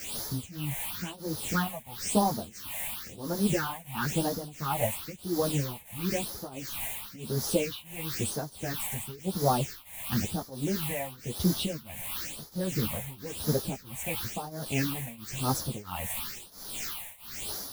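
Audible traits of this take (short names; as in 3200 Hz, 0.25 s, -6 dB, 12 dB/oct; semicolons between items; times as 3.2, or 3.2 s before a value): a quantiser's noise floor 6-bit, dither triangular; phasing stages 6, 0.98 Hz, lowest notch 340–2600 Hz; tremolo triangle 1.5 Hz, depth 95%; a shimmering, thickened sound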